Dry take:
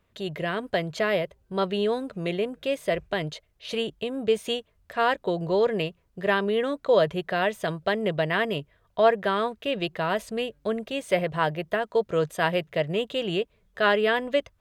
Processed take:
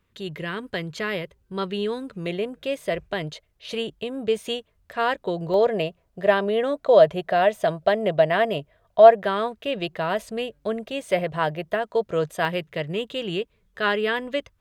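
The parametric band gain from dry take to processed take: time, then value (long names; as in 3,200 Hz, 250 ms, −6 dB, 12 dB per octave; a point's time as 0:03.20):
parametric band 660 Hz 0.5 octaves
−11 dB
from 0:02.26 −0.5 dB
from 0:05.54 +10 dB
from 0:09.23 +2.5 dB
from 0:12.45 −6 dB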